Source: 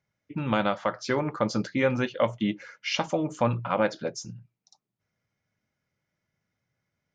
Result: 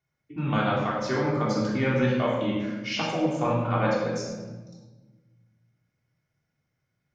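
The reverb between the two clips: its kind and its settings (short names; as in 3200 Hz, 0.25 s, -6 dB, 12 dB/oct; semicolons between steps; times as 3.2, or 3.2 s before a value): shoebox room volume 920 m³, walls mixed, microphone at 3.4 m; gain -6 dB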